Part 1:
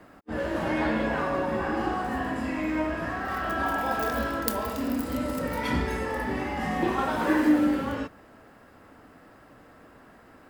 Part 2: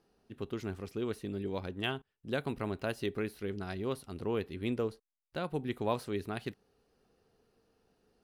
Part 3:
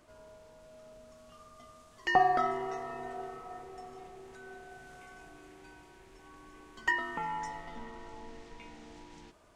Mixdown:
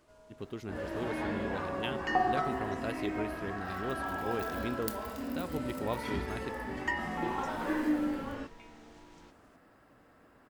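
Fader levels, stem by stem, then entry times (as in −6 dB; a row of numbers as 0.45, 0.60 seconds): −9.0, −3.0, −4.0 decibels; 0.40, 0.00, 0.00 seconds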